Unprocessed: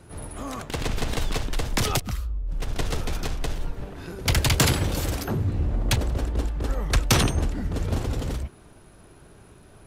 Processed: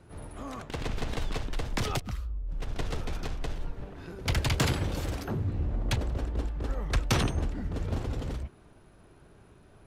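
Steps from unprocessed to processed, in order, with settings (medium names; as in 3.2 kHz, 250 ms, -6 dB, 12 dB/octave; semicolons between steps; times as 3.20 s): low-pass 4 kHz 6 dB/octave; trim -5.5 dB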